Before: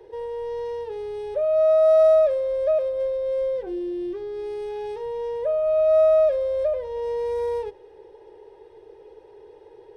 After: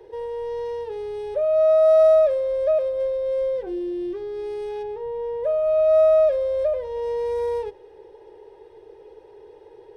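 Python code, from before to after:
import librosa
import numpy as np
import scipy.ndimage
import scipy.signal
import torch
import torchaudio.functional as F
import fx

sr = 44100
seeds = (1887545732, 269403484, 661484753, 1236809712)

y = fx.lowpass(x, sr, hz=fx.line((4.82, 1100.0), (5.43, 1500.0)), slope=6, at=(4.82, 5.43), fade=0.02)
y = y * 10.0 ** (1.0 / 20.0)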